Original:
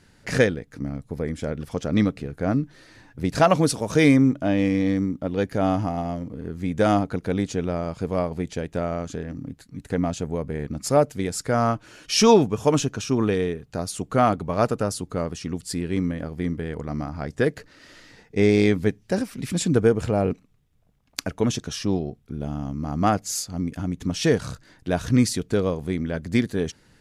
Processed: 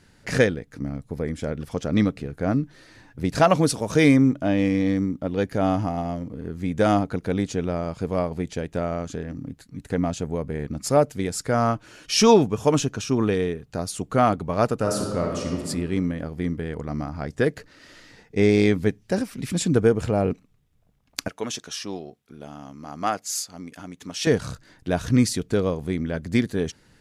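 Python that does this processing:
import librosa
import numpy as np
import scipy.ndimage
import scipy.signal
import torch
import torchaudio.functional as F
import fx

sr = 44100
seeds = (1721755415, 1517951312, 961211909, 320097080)

y = fx.reverb_throw(x, sr, start_s=14.78, length_s=0.88, rt60_s=1.6, drr_db=0.5)
y = fx.highpass(y, sr, hz=790.0, slope=6, at=(21.28, 24.27))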